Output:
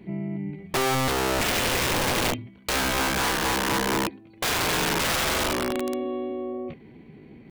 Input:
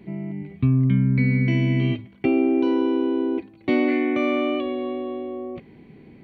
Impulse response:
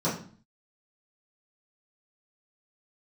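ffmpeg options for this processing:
-af "atempo=0.83,aeval=exprs='(mod(9.44*val(0)+1,2)-1)/9.44':c=same"

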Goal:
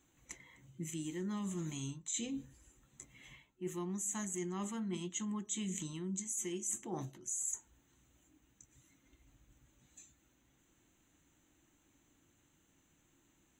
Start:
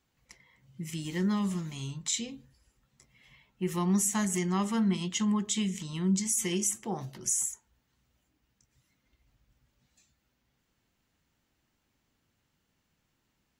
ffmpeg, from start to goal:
-af "superequalizer=6b=2.51:14b=0.316:15b=2.51,areverse,acompressor=threshold=-40dB:ratio=8,areverse,volume=2.5dB"

